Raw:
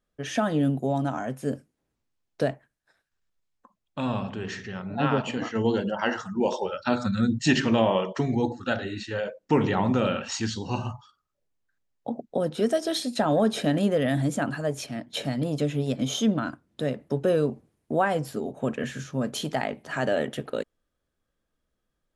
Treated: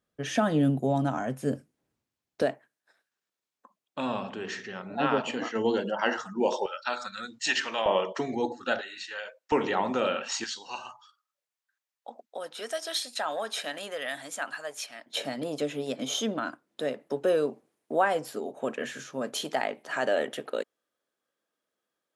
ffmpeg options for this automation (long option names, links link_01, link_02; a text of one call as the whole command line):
ffmpeg -i in.wav -af "asetnsamples=nb_out_samples=441:pad=0,asendcmd='2.42 highpass f 280;6.66 highpass f 900;7.86 highpass f 350;8.81 highpass f 1100;9.52 highpass f 380;10.44 highpass f 1000;15.06 highpass f 370',highpass=81" out.wav